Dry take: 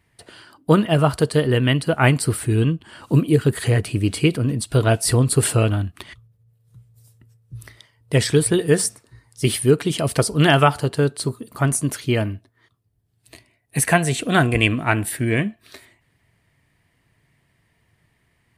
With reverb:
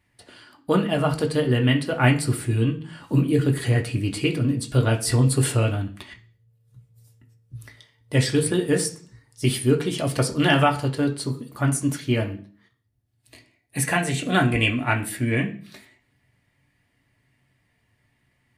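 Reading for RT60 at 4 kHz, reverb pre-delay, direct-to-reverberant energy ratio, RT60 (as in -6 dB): 0.50 s, 3 ms, 1.0 dB, 0.45 s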